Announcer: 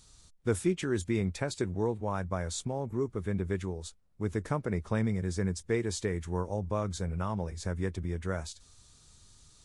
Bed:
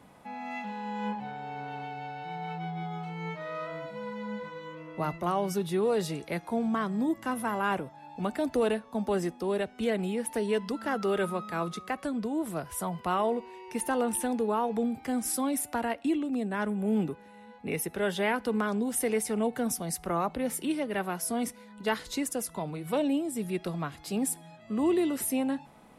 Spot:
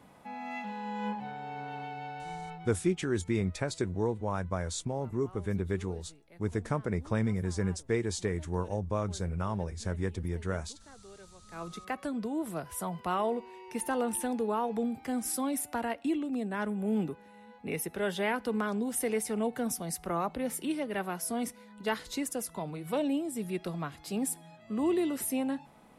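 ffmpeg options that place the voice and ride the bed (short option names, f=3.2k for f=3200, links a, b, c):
-filter_complex "[0:a]adelay=2200,volume=0dB[a];[1:a]volume=20dB,afade=t=out:st=2.28:d=0.52:silence=0.0749894,afade=t=in:st=11.42:d=0.47:silence=0.0841395[b];[a][b]amix=inputs=2:normalize=0"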